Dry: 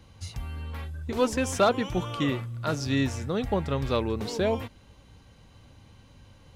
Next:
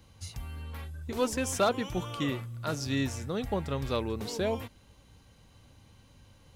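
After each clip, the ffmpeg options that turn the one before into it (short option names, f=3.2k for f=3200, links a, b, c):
-af "highshelf=f=7.4k:g=9.5,volume=-4.5dB"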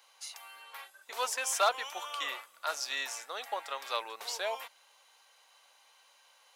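-af "highpass=f=710:w=0.5412,highpass=f=710:w=1.3066,volume=2.5dB"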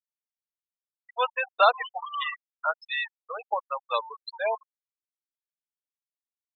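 -filter_complex "[0:a]acrossover=split=4600[a][b];[b]acompressor=threshold=-51dB:ratio=4:attack=1:release=60[c];[a][c]amix=inputs=2:normalize=0,afftfilt=real='re*gte(hypot(re,im),0.0447)':imag='im*gte(hypot(re,im),0.0447)':win_size=1024:overlap=0.75,volume=8.5dB"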